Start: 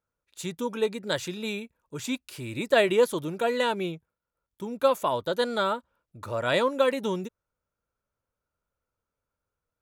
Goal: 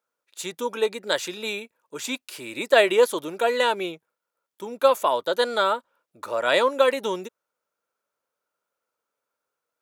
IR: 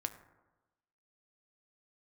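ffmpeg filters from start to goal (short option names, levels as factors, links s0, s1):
-af "highpass=390,volume=1.78"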